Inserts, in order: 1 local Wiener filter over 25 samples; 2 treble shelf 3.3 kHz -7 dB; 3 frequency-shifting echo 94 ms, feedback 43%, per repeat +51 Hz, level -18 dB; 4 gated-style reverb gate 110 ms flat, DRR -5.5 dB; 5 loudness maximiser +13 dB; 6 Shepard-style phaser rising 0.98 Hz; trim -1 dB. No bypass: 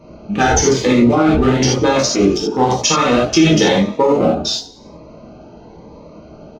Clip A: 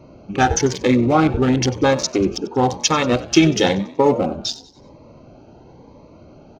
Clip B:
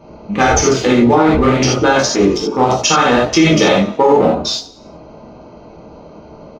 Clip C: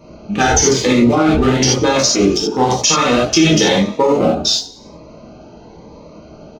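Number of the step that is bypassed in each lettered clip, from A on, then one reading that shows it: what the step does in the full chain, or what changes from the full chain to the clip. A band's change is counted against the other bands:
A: 4, momentary loudness spread change +2 LU; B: 6, 2 kHz band +3.0 dB; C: 2, 8 kHz band +4.0 dB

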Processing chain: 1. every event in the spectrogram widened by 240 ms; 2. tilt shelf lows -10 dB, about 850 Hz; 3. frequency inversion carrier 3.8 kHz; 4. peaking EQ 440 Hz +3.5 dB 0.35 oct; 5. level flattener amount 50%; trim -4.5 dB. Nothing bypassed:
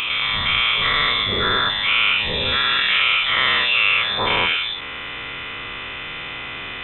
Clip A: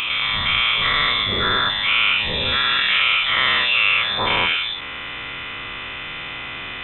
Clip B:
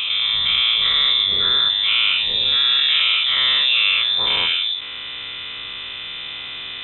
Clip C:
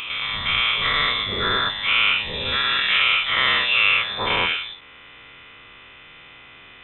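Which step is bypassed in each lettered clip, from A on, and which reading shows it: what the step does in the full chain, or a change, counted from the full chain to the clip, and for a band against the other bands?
4, 500 Hz band -1.5 dB; 2, 4 kHz band +13.0 dB; 5, momentary loudness spread change -7 LU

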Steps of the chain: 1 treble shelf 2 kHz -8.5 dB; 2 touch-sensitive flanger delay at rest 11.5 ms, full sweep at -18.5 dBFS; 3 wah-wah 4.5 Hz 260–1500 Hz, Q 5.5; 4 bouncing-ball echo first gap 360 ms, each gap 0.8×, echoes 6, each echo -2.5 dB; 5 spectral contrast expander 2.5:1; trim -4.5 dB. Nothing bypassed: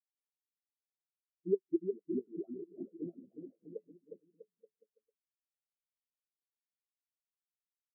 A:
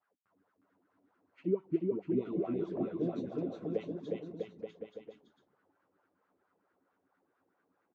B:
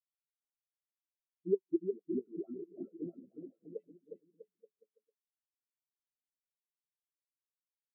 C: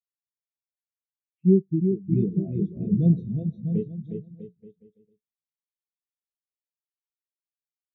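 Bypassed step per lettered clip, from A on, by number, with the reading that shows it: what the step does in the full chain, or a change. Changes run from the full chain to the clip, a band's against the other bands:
5, crest factor change -5.0 dB; 1, momentary loudness spread change -1 LU; 3, loudness change +15.0 LU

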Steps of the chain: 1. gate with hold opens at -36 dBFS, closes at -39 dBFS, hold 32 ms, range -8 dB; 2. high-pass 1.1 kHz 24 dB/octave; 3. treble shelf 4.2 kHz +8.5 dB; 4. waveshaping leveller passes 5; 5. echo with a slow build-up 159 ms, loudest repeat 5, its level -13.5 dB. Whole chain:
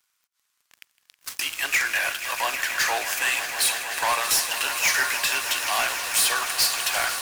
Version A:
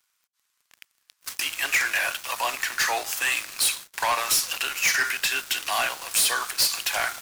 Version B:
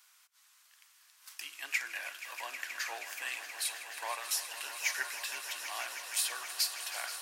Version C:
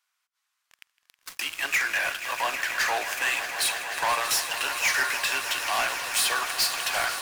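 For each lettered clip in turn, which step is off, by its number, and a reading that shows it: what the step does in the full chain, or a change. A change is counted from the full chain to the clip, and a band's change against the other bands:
5, echo-to-direct -4.0 dB to none; 4, crest factor change +10.0 dB; 3, 8 kHz band -4.0 dB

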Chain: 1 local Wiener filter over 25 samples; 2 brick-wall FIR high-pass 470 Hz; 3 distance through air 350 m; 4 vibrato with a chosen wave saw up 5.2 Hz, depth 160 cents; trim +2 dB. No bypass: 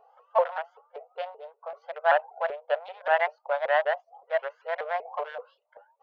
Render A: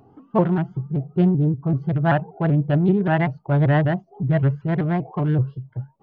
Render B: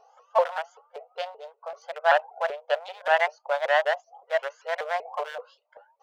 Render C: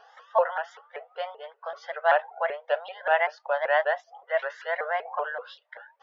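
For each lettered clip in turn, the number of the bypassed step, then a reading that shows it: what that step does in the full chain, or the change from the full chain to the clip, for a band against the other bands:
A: 2, crest factor change -8.0 dB; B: 3, 4 kHz band +5.5 dB; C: 1, 2 kHz band +2.0 dB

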